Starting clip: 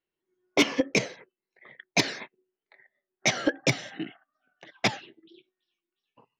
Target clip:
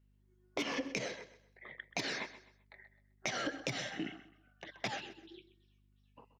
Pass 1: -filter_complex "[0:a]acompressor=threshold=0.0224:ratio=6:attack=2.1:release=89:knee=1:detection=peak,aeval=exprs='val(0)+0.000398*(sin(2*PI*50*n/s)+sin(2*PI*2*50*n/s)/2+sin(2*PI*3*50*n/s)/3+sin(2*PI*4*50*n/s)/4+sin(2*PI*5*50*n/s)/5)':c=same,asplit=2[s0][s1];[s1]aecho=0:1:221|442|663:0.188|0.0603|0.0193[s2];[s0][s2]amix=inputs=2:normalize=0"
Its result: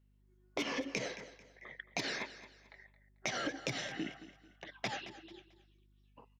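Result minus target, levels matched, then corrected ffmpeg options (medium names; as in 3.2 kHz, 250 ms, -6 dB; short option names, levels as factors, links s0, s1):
echo 92 ms late
-filter_complex "[0:a]acompressor=threshold=0.0224:ratio=6:attack=2.1:release=89:knee=1:detection=peak,aeval=exprs='val(0)+0.000398*(sin(2*PI*50*n/s)+sin(2*PI*2*50*n/s)/2+sin(2*PI*3*50*n/s)/3+sin(2*PI*4*50*n/s)/4+sin(2*PI*5*50*n/s)/5)':c=same,asplit=2[s0][s1];[s1]aecho=0:1:129|258|387:0.188|0.0603|0.0193[s2];[s0][s2]amix=inputs=2:normalize=0"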